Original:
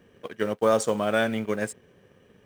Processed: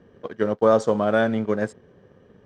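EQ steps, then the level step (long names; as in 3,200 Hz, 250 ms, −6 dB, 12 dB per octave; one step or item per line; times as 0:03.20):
high-frequency loss of the air 150 metres
parametric band 2,500 Hz −10 dB 0.84 octaves
+5.0 dB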